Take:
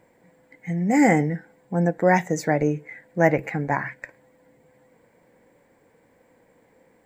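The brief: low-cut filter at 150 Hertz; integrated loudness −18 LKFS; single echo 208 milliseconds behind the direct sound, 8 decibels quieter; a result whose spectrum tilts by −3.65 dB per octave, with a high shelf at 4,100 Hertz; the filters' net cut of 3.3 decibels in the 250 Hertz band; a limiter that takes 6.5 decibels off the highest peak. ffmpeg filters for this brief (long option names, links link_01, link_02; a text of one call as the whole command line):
ffmpeg -i in.wav -af "highpass=150,equalizer=frequency=250:width_type=o:gain=-3.5,highshelf=frequency=4100:gain=-7,alimiter=limit=-12.5dB:level=0:latency=1,aecho=1:1:208:0.398,volume=8dB" out.wav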